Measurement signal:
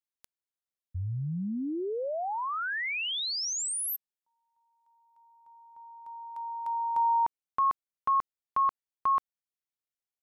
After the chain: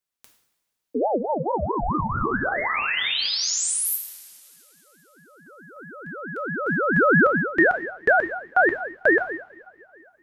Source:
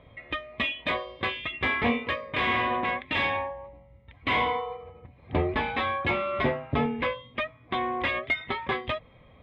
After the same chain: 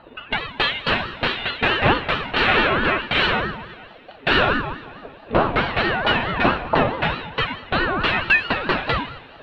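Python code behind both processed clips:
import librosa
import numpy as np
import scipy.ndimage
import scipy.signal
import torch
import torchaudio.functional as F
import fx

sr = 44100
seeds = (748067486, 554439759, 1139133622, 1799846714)

y = fx.transient(x, sr, attack_db=2, sustain_db=-4)
y = fx.rev_double_slope(y, sr, seeds[0], early_s=0.7, late_s=3.0, knee_db=-18, drr_db=2.0)
y = fx.ring_lfo(y, sr, carrier_hz=550.0, swing_pct=40, hz=4.6)
y = y * librosa.db_to_amplitude(8.5)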